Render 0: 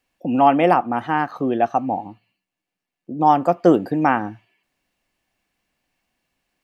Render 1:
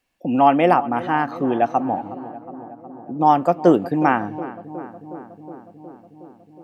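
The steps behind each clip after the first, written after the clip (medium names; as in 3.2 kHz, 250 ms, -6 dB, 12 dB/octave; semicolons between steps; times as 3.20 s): filtered feedback delay 365 ms, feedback 77%, low-pass 1.6 kHz, level -15.5 dB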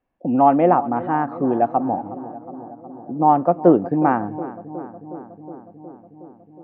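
low-pass 1.1 kHz 12 dB/octave; trim +1 dB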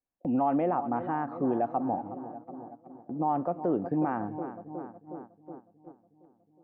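gate -36 dBFS, range -11 dB; peak limiter -11.5 dBFS, peak gain reduction 10 dB; trim -7.5 dB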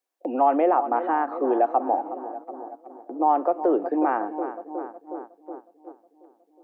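steep high-pass 320 Hz 36 dB/octave; trim +8.5 dB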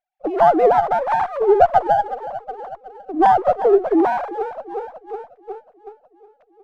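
formants replaced by sine waves; sliding maximum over 5 samples; trim +6.5 dB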